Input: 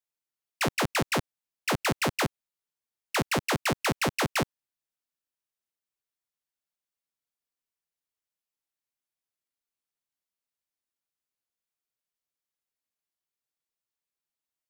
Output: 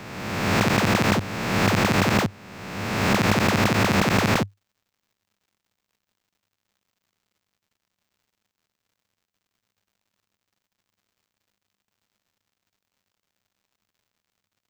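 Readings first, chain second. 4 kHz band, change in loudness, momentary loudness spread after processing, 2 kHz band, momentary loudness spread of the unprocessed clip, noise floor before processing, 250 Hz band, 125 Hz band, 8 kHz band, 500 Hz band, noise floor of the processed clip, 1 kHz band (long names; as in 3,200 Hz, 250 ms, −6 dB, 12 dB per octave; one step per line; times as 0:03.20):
+5.5 dB, +7.0 dB, 11 LU, +7.0 dB, 5 LU, below −85 dBFS, +11.0 dB, +11.5 dB, +3.5 dB, +7.0 dB, −85 dBFS, +7.0 dB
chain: peak hold with a rise ahead of every peak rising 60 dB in 1.63 s
surface crackle 180 per second −57 dBFS
thirty-one-band graphic EQ 100 Hz +11 dB, 200 Hz +9 dB, 10,000 Hz −10 dB, 16,000 Hz −4 dB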